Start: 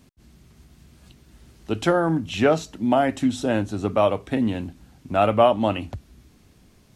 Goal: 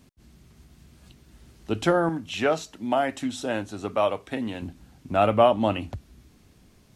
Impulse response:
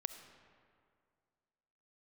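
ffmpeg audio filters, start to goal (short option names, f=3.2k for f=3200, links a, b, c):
-filter_complex "[0:a]asettb=1/sr,asplit=3[a][b][c];[a]atrim=end=2.094[d];[b]atrim=start=2.09:end=4.62,asetpts=PTS-STARTPTS,afade=t=in:d=0.004:c=qsin,afade=t=out:st=2.526:d=0.004:c=qsin,lowshelf=f=350:g=-10[e];[c]atrim=start=4.616[f];[d][e]acrossfade=d=0.004:c1=hsin:c2=qsin[g];[g][f]acrossfade=d=0.004:c1=qsin:c2=hsin,volume=-1.5dB"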